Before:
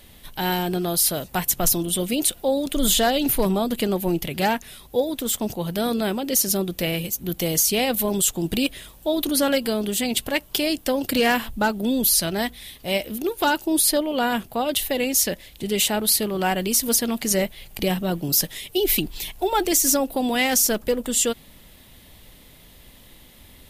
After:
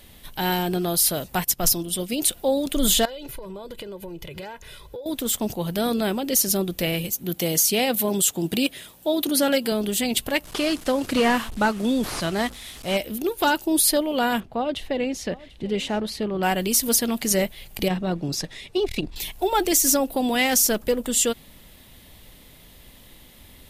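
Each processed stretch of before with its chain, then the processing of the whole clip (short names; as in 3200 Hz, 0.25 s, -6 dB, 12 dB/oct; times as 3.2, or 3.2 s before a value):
1.44–2.22 bell 5100 Hz +7 dB 0.25 oct + upward expander, over -39 dBFS
3.05–5.06 high shelf 6200 Hz -11.5 dB + comb 2 ms, depth 70% + compressor 16:1, threshold -32 dBFS
7.14–9.72 HPF 120 Hz + notch 1100 Hz, Q 20
10.44–12.97 delta modulation 64 kbps, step -34.5 dBFS + dynamic EQ 1200 Hz, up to +6 dB, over -43 dBFS, Q 4
14.4–16.43 tape spacing loss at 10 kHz 23 dB + echo 0.741 s -20.5 dB
17.88–19.16 air absorption 94 m + notch 3100 Hz, Q 9 + core saturation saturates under 230 Hz
whole clip: dry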